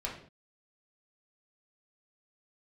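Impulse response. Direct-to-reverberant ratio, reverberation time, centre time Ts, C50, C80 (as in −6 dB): −3.5 dB, non-exponential decay, 28 ms, 6.5 dB, 10.5 dB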